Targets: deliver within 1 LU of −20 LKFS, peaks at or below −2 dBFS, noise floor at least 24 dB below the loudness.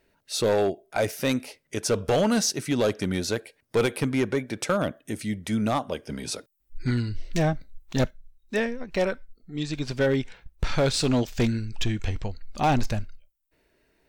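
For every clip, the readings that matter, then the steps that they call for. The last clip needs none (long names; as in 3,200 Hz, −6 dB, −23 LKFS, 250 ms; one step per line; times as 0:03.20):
share of clipped samples 1.4%; peaks flattened at −16.5 dBFS; integrated loudness −27.0 LKFS; sample peak −16.5 dBFS; target loudness −20.0 LKFS
→ clipped peaks rebuilt −16.5 dBFS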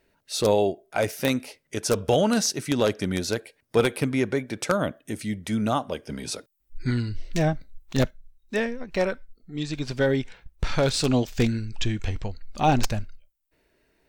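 share of clipped samples 0.0%; integrated loudness −26.5 LKFS; sample peak −7.5 dBFS; target loudness −20.0 LKFS
→ level +6.5 dB
brickwall limiter −2 dBFS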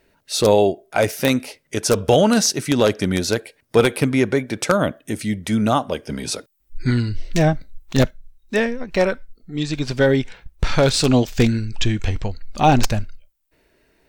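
integrated loudness −20.0 LKFS; sample peak −2.0 dBFS; background noise floor −64 dBFS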